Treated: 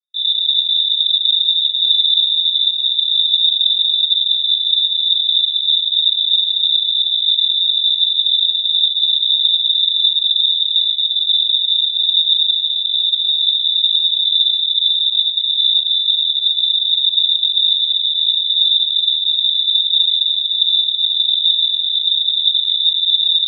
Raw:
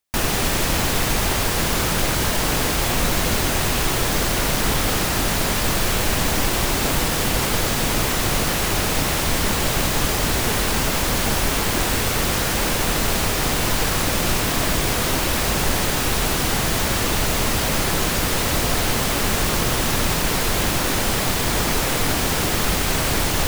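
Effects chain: inverse Chebyshev band-stop 640–2400 Hz, stop band 80 dB; reverberation RT60 0.80 s, pre-delay 3 ms, DRR -7.5 dB; frequency inversion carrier 3.7 kHz; trim -5 dB

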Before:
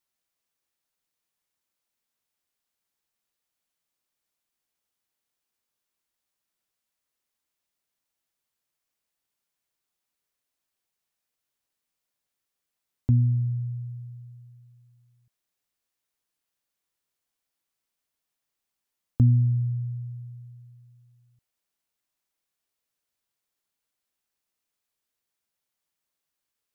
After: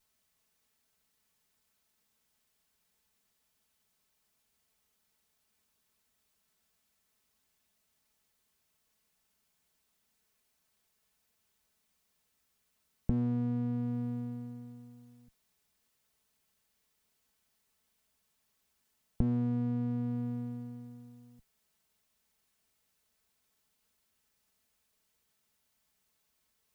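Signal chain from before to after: comb filter that takes the minimum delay 4.6 ms; peaking EQ 81 Hz +10 dB 2.1 oct; compression 5:1, threshold -38 dBFS, peak gain reduction 20.5 dB; trim +8.5 dB

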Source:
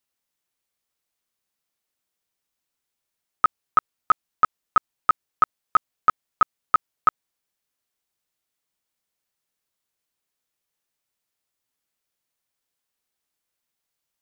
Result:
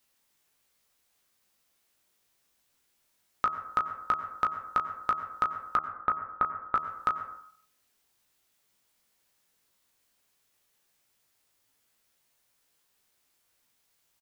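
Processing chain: 5.76–6.75 s: low-pass 2 kHz 24 dB/octave; doubling 19 ms -5 dB; peak limiter -17.5 dBFS, peak gain reduction 9 dB; plate-style reverb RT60 0.53 s, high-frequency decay 0.45×, pre-delay 80 ms, DRR 11 dB; compression 2:1, threshold -38 dBFS, peak gain reduction 9.5 dB; de-hum 79.63 Hz, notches 17; trim +8 dB

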